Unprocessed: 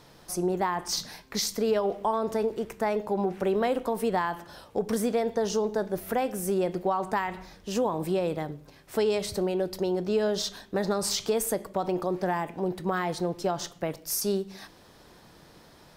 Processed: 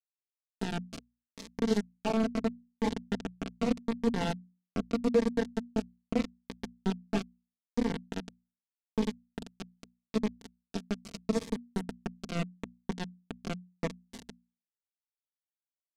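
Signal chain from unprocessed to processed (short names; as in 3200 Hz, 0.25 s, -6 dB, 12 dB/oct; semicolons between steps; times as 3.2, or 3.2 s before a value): resonator 95 Hz, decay 0.31 s, harmonics odd, mix 80%; on a send: thinning echo 0.299 s, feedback 21%, high-pass 1200 Hz, level -5 dB; on the sum: bit-crush 5-bit; LPF 5500 Hz 12 dB/oct; low shelf 390 Hz +8.5 dB; comb 4.4 ms, depth 61%; limiter -21 dBFS, peak gain reduction 7 dB; bell 230 Hz +11.5 dB 2.4 oct; notches 60/120/180/240 Hz; cascading phaser falling 0.8 Hz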